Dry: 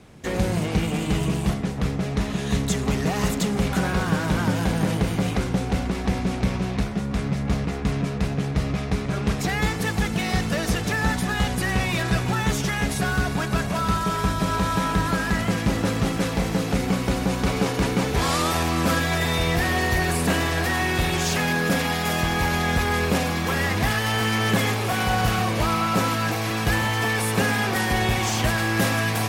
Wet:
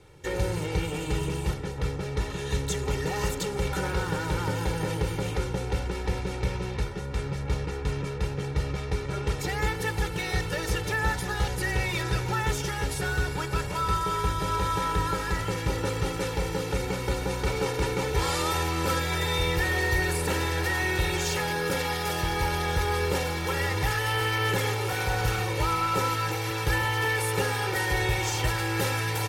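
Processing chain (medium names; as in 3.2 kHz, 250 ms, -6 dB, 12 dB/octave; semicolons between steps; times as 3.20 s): comb 2.2 ms, depth 99%; trim -7 dB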